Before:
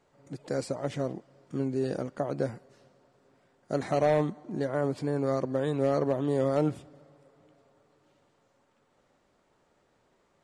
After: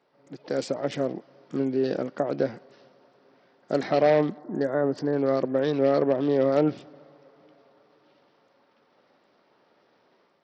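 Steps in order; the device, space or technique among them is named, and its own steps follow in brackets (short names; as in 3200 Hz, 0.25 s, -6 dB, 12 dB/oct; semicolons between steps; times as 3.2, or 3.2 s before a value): 4.39–5.13 Chebyshev band-stop 1900–4500 Hz, order 3; dynamic EQ 1000 Hz, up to -5 dB, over -44 dBFS, Q 1.8; Bluetooth headset (HPF 210 Hz 12 dB/oct; AGC gain up to 6 dB; downsampling 16000 Hz; SBC 64 kbps 44100 Hz)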